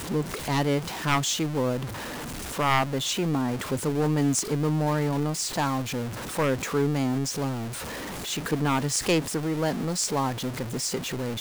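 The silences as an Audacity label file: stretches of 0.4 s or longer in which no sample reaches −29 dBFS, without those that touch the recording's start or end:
1.860000	2.510000	silence
7.670000	8.280000	silence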